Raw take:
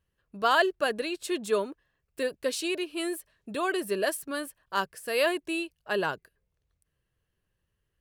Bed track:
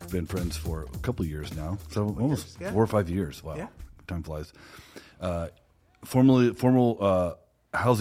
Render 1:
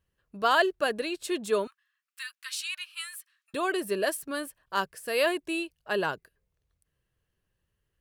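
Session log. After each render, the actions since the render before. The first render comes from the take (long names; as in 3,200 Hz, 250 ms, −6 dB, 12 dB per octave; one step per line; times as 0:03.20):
0:01.67–0:03.54: elliptic high-pass filter 1,200 Hz, stop band 60 dB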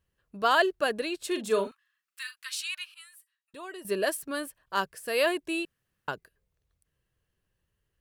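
0:01.27–0:02.40: double-tracking delay 41 ms −9.5 dB
0:02.94–0:03.85: tuned comb filter 950 Hz, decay 0.17 s, mix 80%
0:05.65–0:06.08: fill with room tone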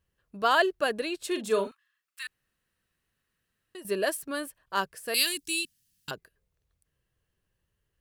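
0:02.27–0:03.75: fill with room tone
0:05.14–0:06.11: drawn EQ curve 260 Hz 0 dB, 580 Hz −24 dB, 970 Hz −17 dB, 5,000 Hz +14 dB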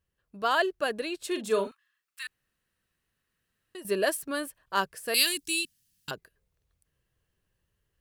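speech leveller 2 s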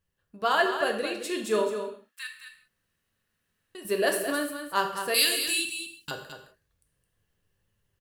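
single-tap delay 215 ms −8.5 dB
reverb whose tail is shaped and stops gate 210 ms falling, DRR 3.5 dB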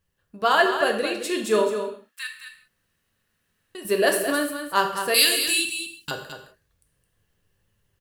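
level +5 dB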